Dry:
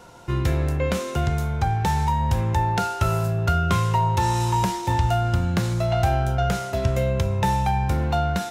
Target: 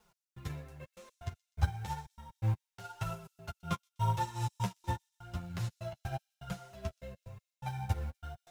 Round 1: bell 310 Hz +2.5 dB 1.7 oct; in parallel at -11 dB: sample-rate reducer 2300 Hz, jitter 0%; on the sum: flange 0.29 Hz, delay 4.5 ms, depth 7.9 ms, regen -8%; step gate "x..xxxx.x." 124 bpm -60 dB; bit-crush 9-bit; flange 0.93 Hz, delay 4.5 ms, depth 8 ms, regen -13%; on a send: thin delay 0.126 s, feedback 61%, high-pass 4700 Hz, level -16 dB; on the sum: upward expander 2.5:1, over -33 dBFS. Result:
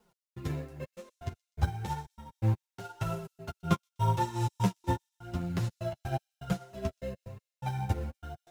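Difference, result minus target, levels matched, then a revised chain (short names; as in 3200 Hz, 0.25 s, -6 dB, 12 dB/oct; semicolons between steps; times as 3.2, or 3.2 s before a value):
250 Hz band +5.0 dB
bell 310 Hz -8.5 dB 1.7 oct; in parallel at -11 dB: sample-rate reducer 2300 Hz, jitter 0%; on the sum: flange 0.29 Hz, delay 4.5 ms, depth 7.9 ms, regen -8%; step gate "x..xxxx.x." 124 bpm -60 dB; bit-crush 9-bit; flange 0.93 Hz, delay 4.5 ms, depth 8 ms, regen -13%; on a send: thin delay 0.126 s, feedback 61%, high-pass 4700 Hz, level -16 dB; on the sum: upward expander 2.5:1, over -33 dBFS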